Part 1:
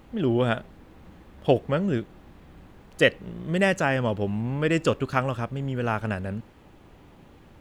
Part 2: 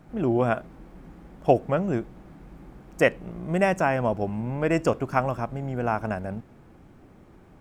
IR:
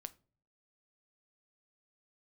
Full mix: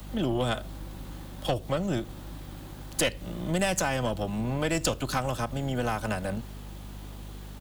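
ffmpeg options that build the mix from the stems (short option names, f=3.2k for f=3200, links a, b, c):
-filter_complex "[0:a]highpass=620,aexciter=amount=3.8:drive=3.9:freq=3.3k,volume=3dB,asplit=2[a][b];[b]volume=-3.5dB[c];[1:a]aeval=exprs='val(0)+0.00891*(sin(2*PI*50*n/s)+sin(2*PI*2*50*n/s)/2+sin(2*PI*3*50*n/s)/3+sin(2*PI*4*50*n/s)/4+sin(2*PI*5*50*n/s)/5)':c=same,volume=-1,adelay=4.3,volume=2.5dB,asplit=2[d][e];[e]apad=whole_len=335349[f];[a][f]sidechaincompress=threshold=-32dB:ratio=8:attack=43:release=103[g];[2:a]atrim=start_sample=2205[h];[c][h]afir=irnorm=-1:irlink=0[i];[g][d][i]amix=inputs=3:normalize=0,acrossover=split=130|3000[j][k][l];[k]acompressor=threshold=-25dB:ratio=3[m];[j][m][l]amix=inputs=3:normalize=0,aeval=exprs='(tanh(7.08*val(0)+0.45)-tanh(0.45))/7.08':c=same"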